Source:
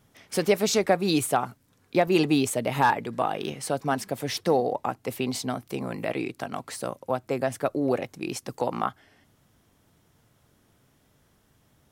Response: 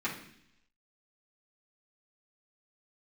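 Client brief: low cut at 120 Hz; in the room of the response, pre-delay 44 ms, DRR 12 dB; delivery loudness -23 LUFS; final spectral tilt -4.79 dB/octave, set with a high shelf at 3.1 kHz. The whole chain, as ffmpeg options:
-filter_complex "[0:a]highpass=120,highshelf=f=3100:g=-7.5,asplit=2[s0][s1];[1:a]atrim=start_sample=2205,adelay=44[s2];[s1][s2]afir=irnorm=-1:irlink=0,volume=0.119[s3];[s0][s3]amix=inputs=2:normalize=0,volume=1.68"

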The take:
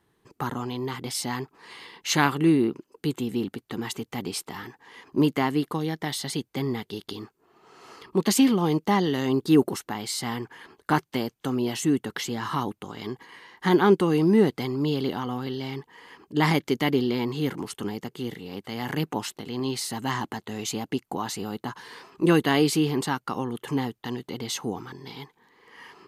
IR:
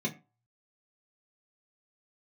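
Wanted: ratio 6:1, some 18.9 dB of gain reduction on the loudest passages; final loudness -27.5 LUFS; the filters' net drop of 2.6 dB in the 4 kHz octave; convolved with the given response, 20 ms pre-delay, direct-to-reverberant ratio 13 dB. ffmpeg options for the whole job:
-filter_complex "[0:a]equalizer=f=4000:t=o:g=-3.5,acompressor=threshold=0.0158:ratio=6,asplit=2[s0][s1];[1:a]atrim=start_sample=2205,adelay=20[s2];[s1][s2]afir=irnorm=-1:irlink=0,volume=0.126[s3];[s0][s3]amix=inputs=2:normalize=0,volume=3.98"

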